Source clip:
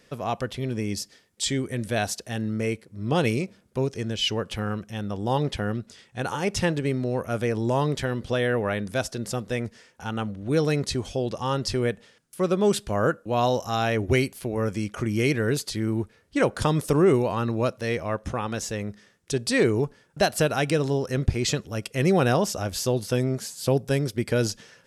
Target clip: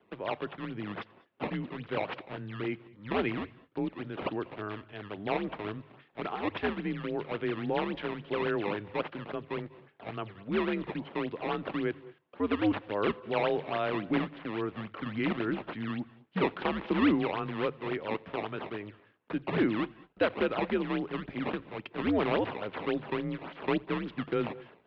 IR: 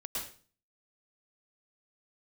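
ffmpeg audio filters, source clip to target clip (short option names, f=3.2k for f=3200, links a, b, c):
-filter_complex "[0:a]bandreject=f=50:t=h:w=6,bandreject=f=100:t=h:w=6,bandreject=f=150:t=h:w=6,bandreject=f=200:t=h:w=6,bandreject=f=250:t=h:w=6,acrusher=samples=16:mix=1:aa=0.000001:lfo=1:lforange=25.6:lforate=3.6,asplit=2[a][b];[1:a]atrim=start_sample=2205,atrim=end_sample=6174,adelay=87[c];[b][c]afir=irnorm=-1:irlink=0,volume=-21dB[d];[a][d]amix=inputs=2:normalize=0,highpass=f=270:t=q:w=0.5412,highpass=f=270:t=q:w=1.307,lowpass=f=3.4k:t=q:w=0.5176,lowpass=f=3.4k:t=q:w=0.7071,lowpass=f=3.4k:t=q:w=1.932,afreqshift=-100,volume=-5dB"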